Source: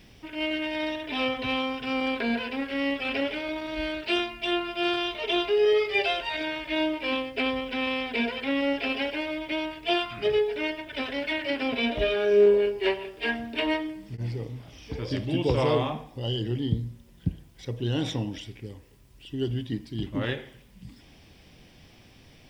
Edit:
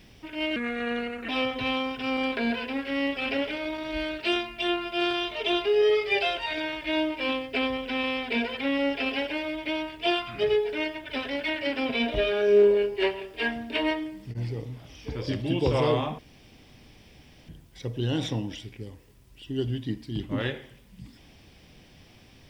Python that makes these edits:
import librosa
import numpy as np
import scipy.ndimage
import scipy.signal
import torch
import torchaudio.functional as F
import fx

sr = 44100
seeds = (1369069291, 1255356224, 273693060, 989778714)

y = fx.edit(x, sr, fx.speed_span(start_s=0.56, length_s=0.56, speed=0.77),
    fx.room_tone_fill(start_s=16.02, length_s=1.3), tone=tone)